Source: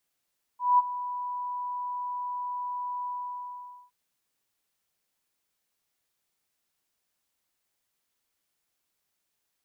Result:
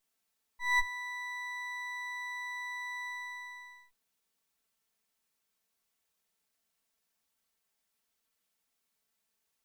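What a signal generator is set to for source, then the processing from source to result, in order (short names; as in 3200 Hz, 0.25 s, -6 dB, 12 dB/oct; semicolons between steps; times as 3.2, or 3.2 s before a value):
ADSR sine 986 Hz, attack 0.196 s, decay 26 ms, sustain -15 dB, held 2.47 s, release 0.847 s -15.5 dBFS
minimum comb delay 4.5 ms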